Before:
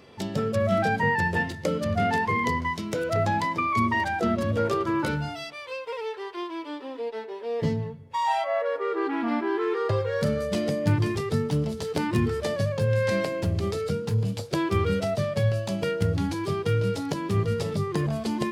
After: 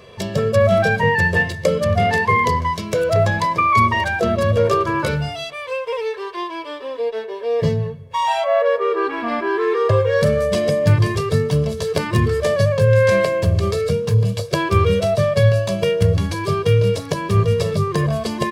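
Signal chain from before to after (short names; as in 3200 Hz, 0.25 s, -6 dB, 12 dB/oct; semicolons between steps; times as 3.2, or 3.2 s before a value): comb 1.8 ms, depth 69%; gain +6.5 dB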